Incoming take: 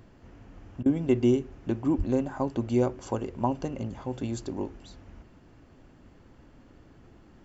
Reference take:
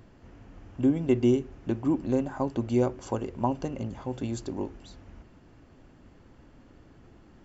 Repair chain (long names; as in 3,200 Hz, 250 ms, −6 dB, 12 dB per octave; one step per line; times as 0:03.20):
0:01.97–0:02.09: high-pass filter 140 Hz 24 dB per octave
repair the gap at 0:00.83, 27 ms